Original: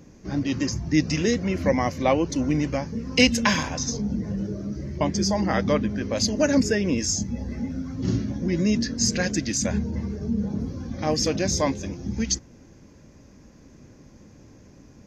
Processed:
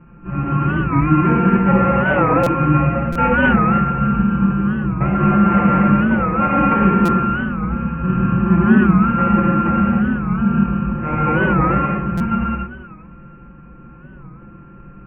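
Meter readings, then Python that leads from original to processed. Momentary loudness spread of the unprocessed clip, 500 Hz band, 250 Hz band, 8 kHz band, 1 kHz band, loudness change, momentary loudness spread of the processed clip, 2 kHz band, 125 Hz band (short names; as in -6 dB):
9 LU, +4.0 dB, +9.0 dB, under -25 dB, +14.5 dB, +8.5 dB, 7 LU, +9.0 dB, +11.0 dB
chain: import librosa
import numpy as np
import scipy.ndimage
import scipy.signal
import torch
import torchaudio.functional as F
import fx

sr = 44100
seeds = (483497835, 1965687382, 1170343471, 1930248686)

y = np.r_[np.sort(x[:len(x) // 32 * 32].reshape(-1, 32), axis=1).ravel(), x[len(x) // 32 * 32:]]
y = scipy.signal.sosfilt(scipy.signal.butter(12, 2600.0, 'lowpass', fs=sr, output='sos'), y)
y = fx.low_shelf(y, sr, hz=310.0, db=9.0)
y = y + 0.95 * np.pad(y, (int(5.7 * sr / 1000.0), 0))[:len(y)]
y = fx.echo_alternate(y, sr, ms=200, hz=990.0, feedback_pct=50, wet_db=-11.5)
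y = fx.rev_gated(y, sr, seeds[0], gate_ms=340, shape='flat', drr_db=-6.0)
y = fx.buffer_glitch(y, sr, at_s=(2.43, 3.12, 7.05, 12.17), block=256, repeats=5)
y = fx.record_warp(y, sr, rpm=45.0, depth_cents=160.0)
y = F.gain(torch.from_numpy(y), -5.5).numpy()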